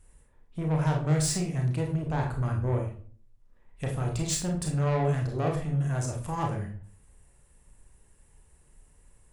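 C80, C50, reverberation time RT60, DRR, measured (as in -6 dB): 11.0 dB, 6.0 dB, 0.45 s, 0.5 dB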